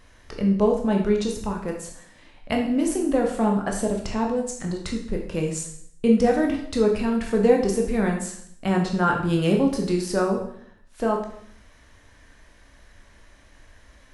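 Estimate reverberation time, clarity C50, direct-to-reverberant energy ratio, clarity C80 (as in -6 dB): 0.65 s, 5.5 dB, 0.5 dB, 9.0 dB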